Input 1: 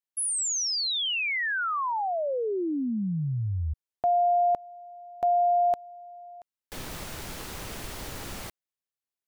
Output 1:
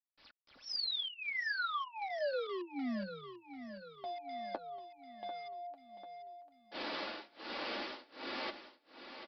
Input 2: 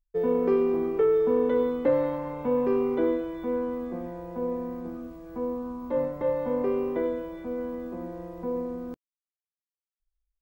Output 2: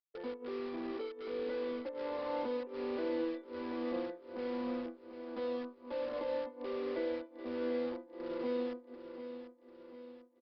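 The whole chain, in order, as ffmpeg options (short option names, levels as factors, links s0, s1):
-filter_complex "[0:a]highpass=f=270:w=0.5412,highpass=f=270:w=1.3066,agate=range=0.316:threshold=0.01:ratio=16:release=381:detection=peak,tremolo=f=1.3:d=0.98,areverse,acompressor=threshold=0.00794:ratio=10:attack=20:release=37:knee=6:detection=peak,areverse,flanger=delay=7.9:depth=1.7:regen=-36:speed=0.36:shape=sinusoidal,asplit=2[s0][s1];[s1]aeval=exprs='(mod(211*val(0)+1,2)-1)/211':c=same,volume=0.316[s2];[s0][s2]amix=inputs=2:normalize=0,aecho=1:1:3.5:0.37,aecho=1:1:743|1486|2229|2972|3715:0.282|0.144|0.0733|0.0374|0.0191,aresample=11025,aresample=44100,volume=2.37" -ar 48000 -c:a libopus -b:a 64k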